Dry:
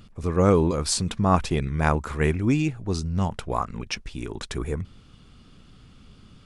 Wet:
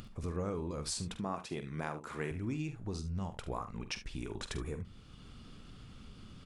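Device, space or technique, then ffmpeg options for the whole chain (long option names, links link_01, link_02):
upward and downward compression: -filter_complex "[0:a]asettb=1/sr,asplit=3[link_01][link_02][link_03];[link_01]atrim=end=1.174[link_04];[link_02]atrim=start=1.17:end=2.31,asetpts=PTS-STARTPTS,afade=type=in:duration=0.004:curve=qsin,afade=type=out:start_time=1.136:duration=0.004:curve=qsin,highpass=190[link_05];[link_03]atrim=start=2.306[link_06];[link_04][link_05]acrossfade=duration=0.004:curve1=hsin:curve2=qsin[link_07];[link_07][link_06]acrossfade=duration=0.004:curve1=qsin:curve2=hsin,acompressor=mode=upward:threshold=-41dB:ratio=2.5,acompressor=threshold=-32dB:ratio=4,aecho=1:1:46|73:0.266|0.188,volume=-4.5dB"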